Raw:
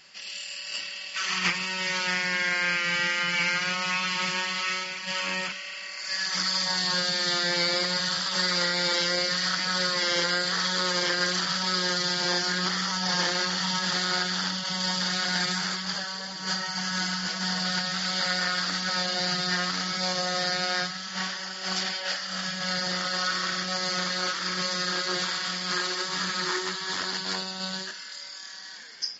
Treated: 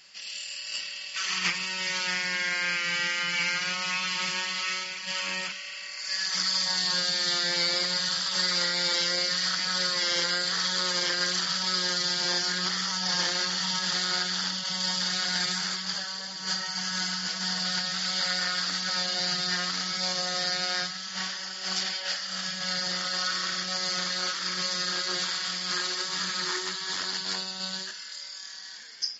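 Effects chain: high shelf 2400 Hz +7.5 dB; gain -5.5 dB

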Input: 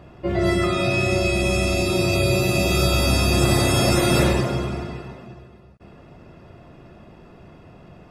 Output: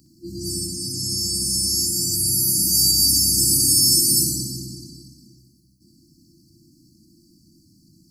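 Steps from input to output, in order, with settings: RIAA curve recording; FFT band-reject 350–4100 Hz; flutter echo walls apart 10.6 m, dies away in 0.51 s

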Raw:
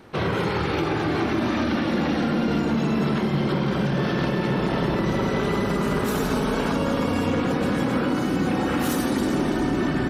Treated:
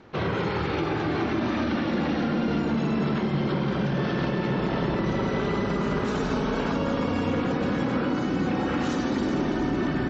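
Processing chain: downsampling 16000 Hz; air absorption 62 m; gain -2.5 dB

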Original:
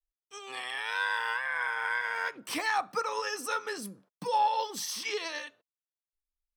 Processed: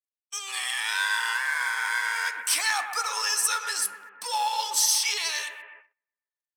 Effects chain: G.711 law mismatch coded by mu; analogue delay 0.125 s, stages 2048, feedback 63%, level -8.5 dB; gate -50 dBFS, range -33 dB; HPF 980 Hz 12 dB/oct; bell 8900 Hz +14.5 dB 1.9 oct; gain +1.5 dB

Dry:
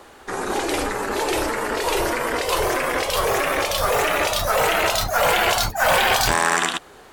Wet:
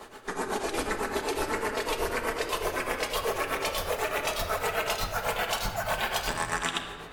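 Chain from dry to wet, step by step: tremolo triangle 8 Hz, depth 100%; reverse; compressor 6:1, threshold -30 dBFS, peak gain reduction 13.5 dB; reverse; shoebox room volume 3700 m³, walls mixed, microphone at 1.5 m; gain +2 dB

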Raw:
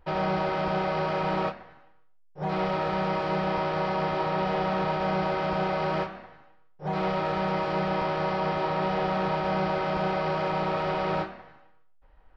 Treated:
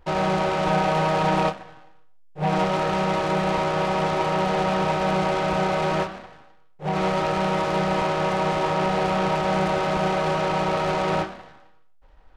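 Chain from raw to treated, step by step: 0.66–2.64 comb 6.5 ms, depth 53%; noise-modulated delay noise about 1400 Hz, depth 0.044 ms; gain +4.5 dB

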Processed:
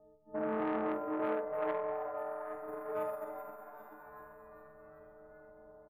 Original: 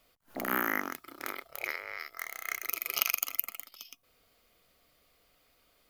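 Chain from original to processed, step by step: frequency quantiser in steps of 6 st; low shelf 280 Hz -9 dB; in parallel at -3 dB: compressor, threshold -35 dBFS, peak gain reduction 21.5 dB; on the sum: inverse Chebyshev low-pass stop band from 2200 Hz, stop band 60 dB; limiter -37 dBFS, peak gain reduction 10 dB; AGC gain up to 5 dB; on a send: frequency-shifting echo 0.392 s, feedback 54%, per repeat +140 Hz, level -10 dB; on the sum: Schroeder reverb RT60 0.5 s, combs from 26 ms, DRR 4 dB; core saturation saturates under 880 Hz; gain +8.5 dB

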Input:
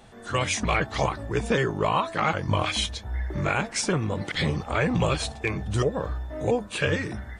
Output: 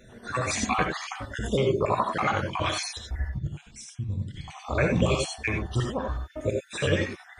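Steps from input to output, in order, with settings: random spectral dropouts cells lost 52%; 3.29–4.48 EQ curve 150 Hz 0 dB, 620 Hz -27 dB, 1300 Hz -29 dB, 3800 Hz -14 dB; non-linear reverb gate 0.11 s rising, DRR 2 dB

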